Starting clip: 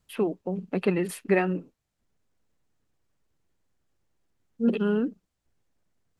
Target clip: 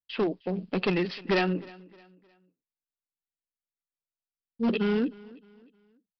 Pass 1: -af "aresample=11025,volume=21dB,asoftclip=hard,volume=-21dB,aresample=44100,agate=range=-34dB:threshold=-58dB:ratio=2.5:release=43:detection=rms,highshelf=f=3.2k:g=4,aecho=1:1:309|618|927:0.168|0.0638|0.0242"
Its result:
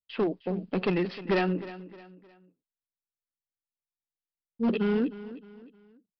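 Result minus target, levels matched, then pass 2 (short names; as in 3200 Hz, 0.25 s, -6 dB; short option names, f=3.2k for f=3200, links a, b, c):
8000 Hz band -6.5 dB; echo-to-direct +6.5 dB
-af "aresample=11025,volume=21dB,asoftclip=hard,volume=-21dB,aresample=44100,agate=range=-34dB:threshold=-58dB:ratio=2.5:release=43:detection=rms,highshelf=f=3.2k:g=13.5,aecho=1:1:309|618|927:0.0794|0.0302|0.0115"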